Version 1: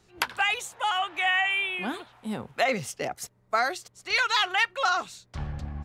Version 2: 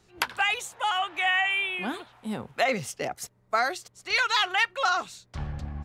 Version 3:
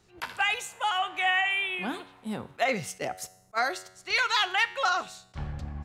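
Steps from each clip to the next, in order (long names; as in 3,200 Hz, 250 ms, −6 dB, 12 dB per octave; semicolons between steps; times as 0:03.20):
no processing that can be heard
tuned comb filter 93 Hz, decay 0.78 s, harmonics all, mix 50%; level that may rise only so fast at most 570 dB per second; level +4 dB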